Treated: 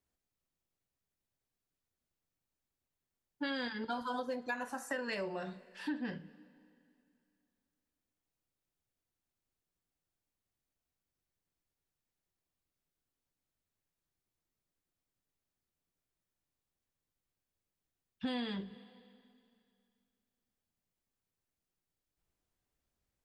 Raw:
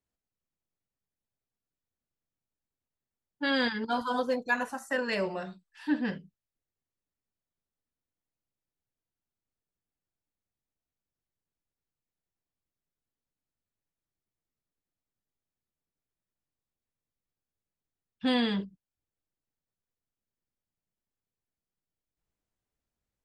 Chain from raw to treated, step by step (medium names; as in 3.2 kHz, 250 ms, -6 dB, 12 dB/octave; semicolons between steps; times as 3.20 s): two-slope reverb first 0.28 s, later 2.5 s, from -21 dB, DRR 13 dB; compression 6:1, threshold -37 dBFS, peak gain reduction 14 dB; trim +1.5 dB